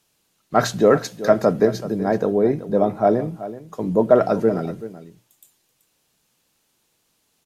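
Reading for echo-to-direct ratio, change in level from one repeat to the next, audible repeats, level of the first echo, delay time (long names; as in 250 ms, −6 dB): −14.5 dB, repeats not evenly spaced, 1, −14.5 dB, 381 ms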